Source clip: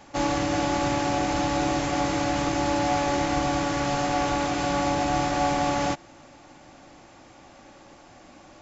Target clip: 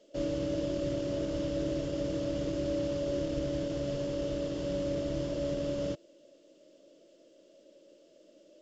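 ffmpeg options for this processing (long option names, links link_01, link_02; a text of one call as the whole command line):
ffmpeg -i in.wav -filter_complex "[0:a]aemphasis=mode=reproduction:type=50kf,afftfilt=real='re*(1-between(b*sr/4096,670,2600))':imag='im*(1-between(b*sr/4096,670,2600))':win_size=4096:overlap=0.75,equalizer=frequency=100:width_type=o:width=0.33:gain=-5,equalizer=frequency=250:width_type=o:width=0.33:gain=-7,equalizer=frequency=500:width_type=o:width=0.33:gain=3,equalizer=frequency=1000:width_type=o:width=0.33:gain=6,equalizer=frequency=1600:width_type=o:width=0.33:gain=7,equalizer=frequency=2500:width_type=o:width=0.33:gain=-10,equalizer=frequency=4000:width_type=o:width=0.33:gain=-8,equalizer=frequency=6300:width_type=o:width=0.33:gain=-6,acrossover=split=240|940|1900[link_01][link_02][link_03][link_04];[link_01]acrusher=bits=6:mix=0:aa=0.000001[link_05];[link_05][link_02][link_03][link_04]amix=inputs=4:normalize=0,volume=-5dB" -ar 16000 -c:a pcm_alaw out.wav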